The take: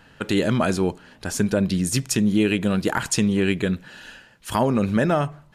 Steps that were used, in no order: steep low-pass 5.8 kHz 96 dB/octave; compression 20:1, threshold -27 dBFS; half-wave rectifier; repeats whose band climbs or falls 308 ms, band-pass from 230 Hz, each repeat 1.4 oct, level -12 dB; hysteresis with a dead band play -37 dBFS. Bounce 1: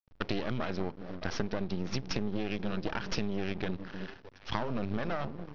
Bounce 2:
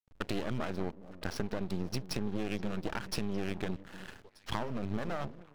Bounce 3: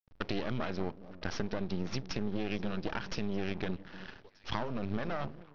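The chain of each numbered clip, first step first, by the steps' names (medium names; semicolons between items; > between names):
repeats whose band climbs or falls > hysteresis with a dead band > half-wave rectifier > steep low-pass > compression; steep low-pass > compression > hysteresis with a dead band > repeats whose band climbs or falls > half-wave rectifier; hysteresis with a dead band > compression > repeats whose band climbs or falls > half-wave rectifier > steep low-pass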